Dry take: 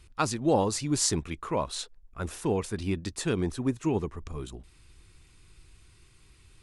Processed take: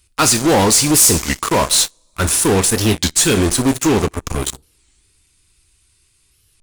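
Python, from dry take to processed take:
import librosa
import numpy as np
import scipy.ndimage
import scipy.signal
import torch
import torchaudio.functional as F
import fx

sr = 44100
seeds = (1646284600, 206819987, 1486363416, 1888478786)

p1 = librosa.effects.preemphasis(x, coef=0.8, zi=[0.0])
p2 = fx.rev_double_slope(p1, sr, seeds[0], early_s=0.34, late_s=2.7, knee_db=-22, drr_db=10.0)
p3 = fx.fuzz(p2, sr, gain_db=46.0, gate_db=-49.0)
p4 = p2 + (p3 * 10.0 ** (-5.0 / 20.0))
p5 = fx.record_warp(p4, sr, rpm=33.33, depth_cents=250.0)
y = p5 * 10.0 ** (7.0 / 20.0)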